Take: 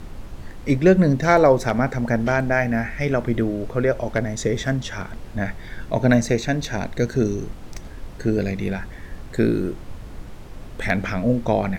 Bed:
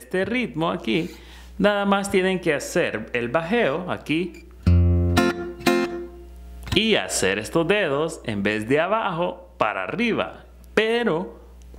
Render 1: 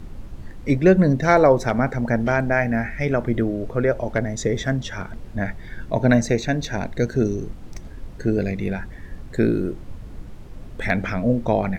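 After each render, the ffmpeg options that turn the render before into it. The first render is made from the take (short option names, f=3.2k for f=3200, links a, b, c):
-af "afftdn=nr=6:nf=-38"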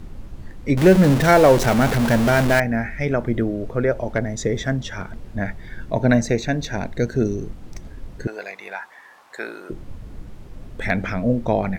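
-filter_complex "[0:a]asettb=1/sr,asplit=3[a][b][c];[a]atrim=end=0.774[d];[b]atrim=start=0.77:end=2.6,asetpts=PTS-STARTPTS,afade=t=in:d=0.004:c=qsin,afade=t=out:st=1.826:d=0.004:c=qsin,aeval=exprs='val(0)+0.5*0.126*sgn(val(0))':c=same[e];[c]atrim=start=2.596[f];[d][e]acrossfade=d=0.004:c1=hsin:c2=qsin[g];[g][f]acrossfade=d=0.004:c1=qsin:c2=hsin,asettb=1/sr,asplit=3[h][i][j];[h]atrim=end=8.274[k];[i]atrim=start=8.27:end=9.7,asetpts=PTS-STARTPTS,afade=t=in:d=0.004:c=qsin,afade=t=out:st=1.426:d=0.004:c=qsin,highpass=f=930:t=q:w=2.7[l];[j]atrim=start=9.696[m];[k][l]acrossfade=d=0.004:c1=hsin:c2=qsin[n];[n][m]acrossfade=d=0.004:c1=qsin:c2=hsin"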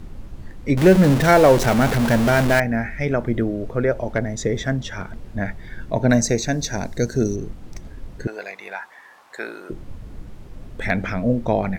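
-filter_complex "[0:a]asettb=1/sr,asplit=3[a][b][c];[a]atrim=end=6.104[d];[b]atrim=start=6.1:end=7.36,asetpts=PTS-STARTPTS,afade=t=in:d=0.004:c=qsin,afade=t=out:st=1.256:d=0.004:c=qsin,highshelf=f=4.1k:t=q:w=1.5:g=7.5[e];[c]atrim=start=7.356[f];[d][e]acrossfade=d=0.004:c1=hsin:c2=qsin[g];[g][f]acrossfade=d=0.004:c1=qsin:c2=hsin"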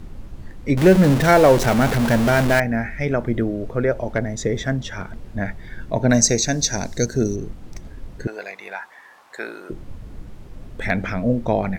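-filter_complex "[0:a]asettb=1/sr,asplit=3[a][b][c];[a]atrim=end=6.144[d];[b]atrim=start=6.14:end=7.06,asetpts=PTS-STARTPTS,afade=t=in:d=0.004:c=qsin,afade=t=out:st=0.916:d=0.004:c=qsin,equalizer=f=5.8k:t=o:w=1.3:g=8.5[e];[c]atrim=start=7.056[f];[d][e]acrossfade=d=0.004:c1=hsin:c2=qsin[g];[g][f]acrossfade=d=0.004:c1=qsin:c2=hsin"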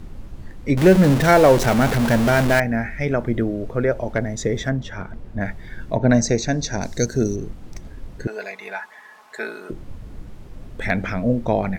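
-filter_complex "[0:a]asettb=1/sr,asplit=3[a][b][c];[a]atrim=end=4.694[d];[b]atrim=start=4.69:end=5.41,asetpts=PTS-STARTPTS,afade=t=in:d=0.004:c=qsin,afade=t=out:st=0.716:d=0.004:c=qsin,highshelf=f=2.9k:g=-9[e];[c]atrim=start=5.406[f];[d][e]acrossfade=d=0.004:c1=hsin:c2=qsin[g];[g][f]acrossfade=d=0.004:c1=qsin:c2=hsin,asettb=1/sr,asplit=3[h][i][j];[h]atrim=end=5.964[k];[i]atrim=start=5.96:end=6.82,asetpts=PTS-STARTPTS,afade=t=in:d=0.004:c=qsin,afade=t=out:st=0.856:d=0.004:c=qsin,aemphasis=mode=reproduction:type=75fm[l];[j]atrim=start=6.816[m];[k][l]acrossfade=d=0.004:c1=hsin:c2=qsin[n];[n][m]acrossfade=d=0.004:c1=qsin:c2=hsin,asettb=1/sr,asplit=3[o][p][q];[o]atrim=end=8.304[r];[p]atrim=start=8.3:end=9.71,asetpts=PTS-STARTPTS,afade=t=in:d=0.004:c=qsin,afade=t=out:st=1.406:d=0.004:c=qsin,aecho=1:1:4.7:0.65,atrim=end_sample=62181[s];[q]atrim=start=9.706[t];[r][s]acrossfade=d=0.004:c1=hsin:c2=qsin[u];[u][t]acrossfade=d=0.004:c1=qsin:c2=hsin"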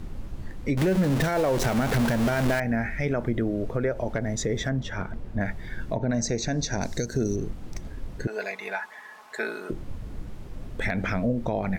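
-af "acompressor=threshold=-24dB:ratio=1.5,alimiter=limit=-16.5dB:level=0:latency=1:release=91"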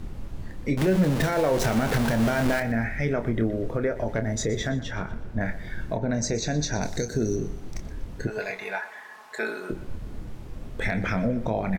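-filter_complex "[0:a]asplit=2[a][b];[b]adelay=27,volume=-8.5dB[c];[a][c]amix=inputs=2:normalize=0,aecho=1:1:122|244|366|488:0.158|0.0682|0.0293|0.0126"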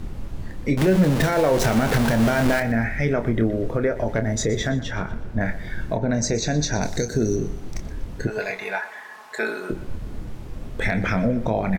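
-af "volume=4dB"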